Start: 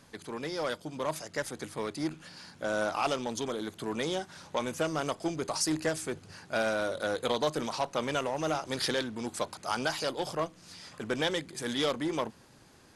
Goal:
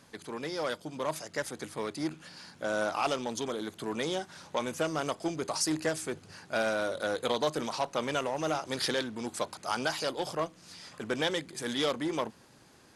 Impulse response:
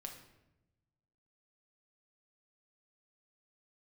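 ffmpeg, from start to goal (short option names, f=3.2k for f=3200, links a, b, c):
-af "lowshelf=f=71:g=-8.5"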